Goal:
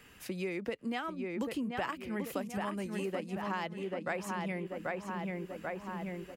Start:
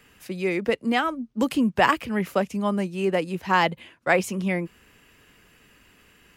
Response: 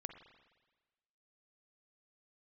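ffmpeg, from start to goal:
-filter_complex "[0:a]asettb=1/sr,asplit=3[a][b][c];[a]atrim=end=2.244[d];[b]atrim=start=2.24:end=3.06,asetpts=PTS-STARTPTS,afade=t=in:d=0.004:c=qsin,afade=t=out:st=0.816:d=0.004:c=qsin,highshelf=f=5.3k:g=11[e];[c]atrim=start=3.056[f];[d][e]acrossfade=d=0.004:c1=hsin:c2=qsin[g];[g][f]acrossfade=d=0.004:c1=qsin:c2=hsin,asplit=2[h][i];[i]adelay=787,lowpass=f=2.6k:p=1,volume=-5dB,asplit=2[j][k];[k]adelay=787,lowpass=f=2.6k:p=1,volume=0.47,asplit=2[l][m];[m]adelay=787,lowpass=f=2.6k:p=1,volume=0.47,asplit=2[n][o];[o]adelay=787,lowpass=f=2.6k:p=1,volume=0.47,asplit=2[p][q];[q]adelay=787,lowpass=f=2.6k:p=1,volume=0.47,asplit=2[r][s];[s]adelay=787,lowpass=f=2.6k:p=1,volume=0.47[t];[j][l][n][p][r][t]amix=inputs=6:normalize=0[u];[h][u]amix=inputs=2:normalize=0,acompressor=threshold=-34dB:ratio=4,volume=-1.5dB"

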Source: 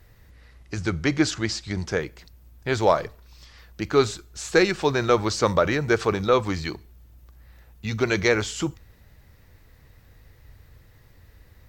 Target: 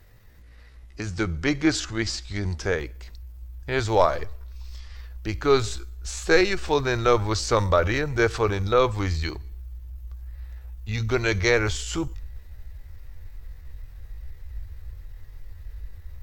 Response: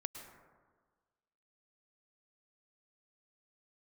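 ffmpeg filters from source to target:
-af "atempo=0.72,asubboost=boost=12:cutoff=50"

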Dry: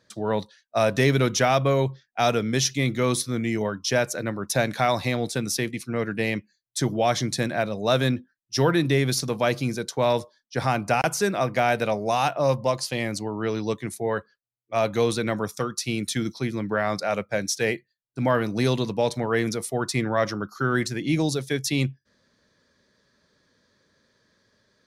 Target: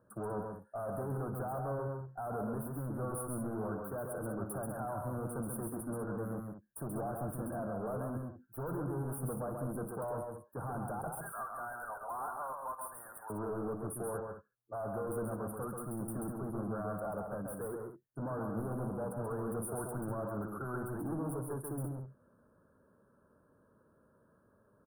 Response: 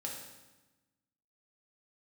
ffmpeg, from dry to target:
-filter_complex "[0:a]asettb=1/sr,asplit=3[a][b][c];[a]atrim=end=11.124[d];[b]atrim=start=11.12:end=13.3,asetpts=PTS-STARTPTS,afade=t=in:d=0.004:c=qsin,afade=t=out:st=2.176:d=0.004:c=qsin,highpass=f=1k:w=0.5412,highpass=f=1k:w=1.3066[e];[c]atrim=start=13.296[f];[d][e]acrossfade=d=0.004:c1=hsin:c2=qsin[g];[g][f]acrossfade=d=0.004:c1=qsin:c2=hsin,alimiter=limit=-19dB:level=0:latency=1:release=243,asoftclip=type=tanh:threshold=-35.5dB,asuperstop=centerf=3900:order=20:qfactor=0.51,aecho=1:1:57|134|196:0.141|0.631|0.316,volume=-1dB"

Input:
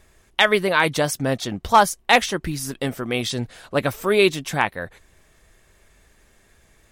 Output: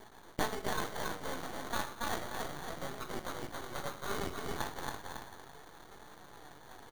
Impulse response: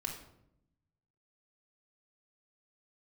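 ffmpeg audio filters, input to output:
-filter_complex "[0:a]lowpass=2k,aderivative,acompressor=mode=upward:threshold=-49dB:ratio=2.5,aecho=1:1:276|552|828|1104:0.562|0.163|0.0473|0.0137,acompressor=threshold=-43dB:ratio=3,asplit=2[a][b];[b]equalizer=f=650:t=o:w=0.31:g=-14.5[c];[1:a]atrim=start_sample=2205,adelay=20[d];[c][d]afir=irnorm=-1:irlink=0,volume=-1.5dB[e];[a][e]amix=inputs=2:normalize=0,acrusher=samples=17:mix=1:aa=0.000001,flanger=delay=4.5:depth=7.7:regen=65:speed=0.33:shape=triangular,aeval=exprs='max(val(0),0)':c=same,volume=14dB"

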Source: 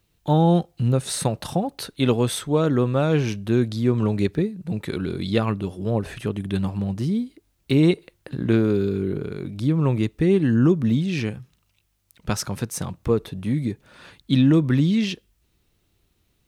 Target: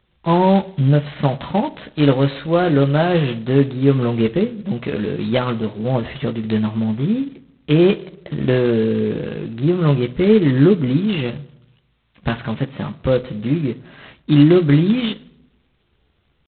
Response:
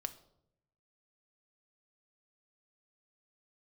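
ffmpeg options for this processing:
-filter_complex "[0:a]asetrate=49501,aresample=44100,atempo=0.890899,asplit=2[a][b];[1:a]atrim=start_sample=2205,adelay=14[c];[b][c]afir=irnorm=-1:irlink=0,volume=-4.5dB[d];[a][d]amix=inputs=2:normalize=0,volume=3.5dB" -ar 8000 -c:a adpcm_g726 -b:a 16k

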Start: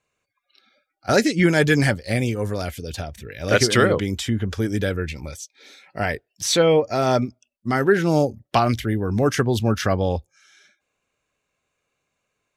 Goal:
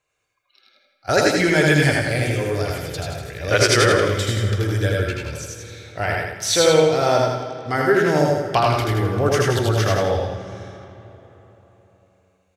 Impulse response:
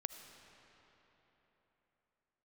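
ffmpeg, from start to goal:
-filter_complex "[0:a]equalizer=f=220:t=o:w=0.6:g=-12,aecho=1:1:81|162|243|324|405:0.708|0.276|0.108|0.042|0.0164,asplit=2[a][b];[1:a]atrim=start_sample=2205,adelay=100[c];[b][c]afir=irnorm=-1:irlink=0,volume=-1.5dB[d];[a][d]amix=inputs=2:normalize=0"

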